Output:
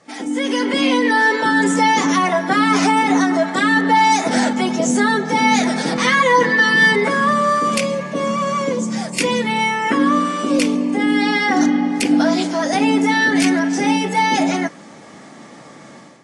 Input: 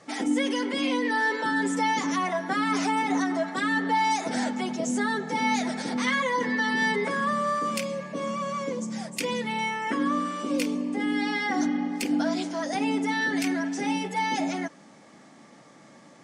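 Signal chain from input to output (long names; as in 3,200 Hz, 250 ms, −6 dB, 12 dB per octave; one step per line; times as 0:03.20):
0:05.87–0:06.93: comb filter 6.2 ms, depth 63%
automatic gain control gain up to 11 dB
AAC 32 kbit/s 24,000 Hz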